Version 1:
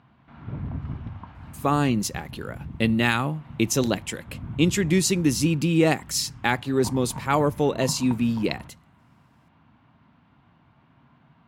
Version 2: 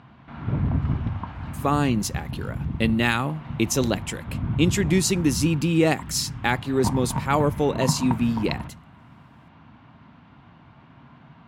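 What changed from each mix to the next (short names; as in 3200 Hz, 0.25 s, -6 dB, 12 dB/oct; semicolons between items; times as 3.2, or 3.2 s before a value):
background +8.5 dB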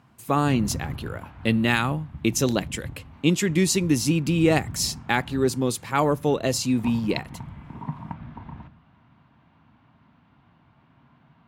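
speech: entry -1.35 s; background -8.5 dB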